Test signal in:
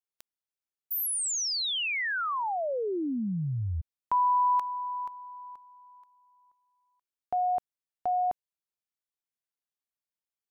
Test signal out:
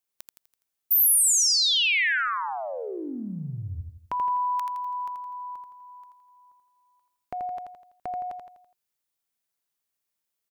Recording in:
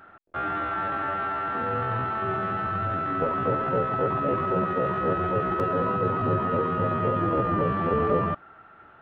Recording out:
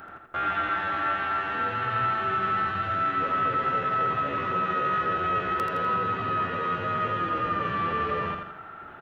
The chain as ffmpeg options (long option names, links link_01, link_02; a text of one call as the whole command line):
ffmpeg -i in.wav -filter_complex "[0:a]acrossover=split=1500[link_01][link_02];[link_01]acompressor=threshold=-41dB:ratio=5:attack=3.3:release=45:detection=peak[link_03];[link_03][link_02]amix=inputs=2:normalize=0,crystalizer=i=0.5:c=0,aecho=1:1:83|166|249|332|415:0.531|0.239|0.108|0.0484|0.0218,volume=6dB" out.wav